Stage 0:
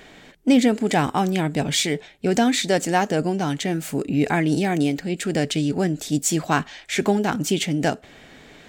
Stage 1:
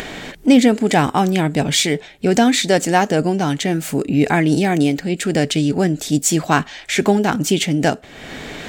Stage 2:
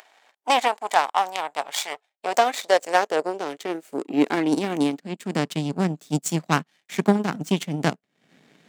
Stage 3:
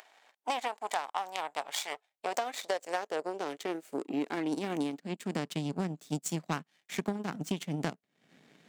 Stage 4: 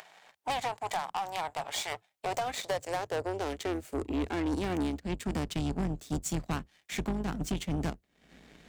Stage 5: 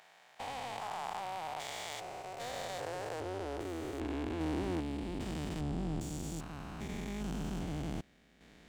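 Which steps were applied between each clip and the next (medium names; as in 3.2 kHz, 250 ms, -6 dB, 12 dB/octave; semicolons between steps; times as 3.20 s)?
upward compressor, threshold -25 dBFS; trim +5 dB
power-law waveshaper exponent 2; high-pass sweep 790 Hz -> 170 Hz, 1.85–5.66 s; trim -2 dB
compression 6:1, threshold -25 dBFS, peak gain reduction 12.5 dB; trim -4.5 dB
octave divider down 2 oct, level -4 dB; saturation -31 dBFS, distortion -10 dB; trim +5 dB
spectrogram pixelated in time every 400 ms; trim -1.5 dB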